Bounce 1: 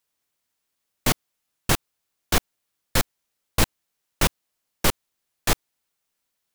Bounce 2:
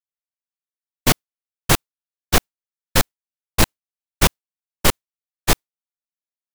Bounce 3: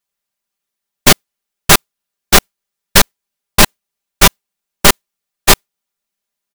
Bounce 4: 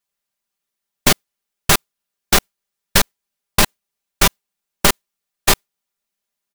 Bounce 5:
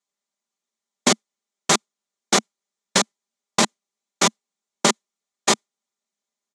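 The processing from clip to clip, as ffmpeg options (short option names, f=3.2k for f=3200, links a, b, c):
-af "agate=range=-33dB:threshold=-19dB:ratio=3:detection=peak,asoftclip=type=hard:threshold=-14.5dB,volume=7dB"
-af "aecho=1:1:5:0.73,apsyclip=15dB,volume=-1.5dB"
-af "acompressor=threshold=-9dB:ratio=6,volume=-1.5dB"
-af "highpass=f=190:w=0.5412,highpass=f=190:w=1.3066,equalizer=f=220:t=q:w=4:g=4,equalizer=f=1.6k:t=q:w=4:g=-6,equalizer=f=2.7k:t=q:w=4:g=-7,equalizer=f=4.8k:t=q:w=4:g=-3,equalizer=f=6.9k:t=q:w=4:g=4,lowpass=f=7.8k:w=0.5412,lowpass=f=7.8k:w=1.3066,volume=-1dB"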